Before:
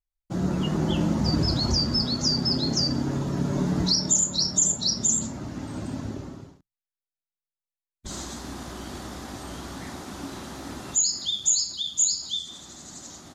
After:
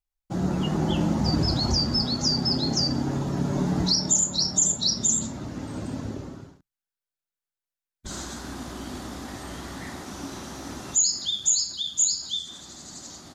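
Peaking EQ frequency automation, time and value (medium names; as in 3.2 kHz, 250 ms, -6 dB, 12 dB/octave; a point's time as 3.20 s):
peaking EQ +6 dB 0.23 oct
790 Hz
from 4.66 s 3.7 kHz
from 5.45 s 480 Hz
from 6.35 s 1.5 kHz
from 8.56 s 260 Hz
from 9.28 s 1.9 kHz
from 10.06 s 5.9 kHz
from 11.25 s 1.6 kHz
from 12.61 s 4.6 kHz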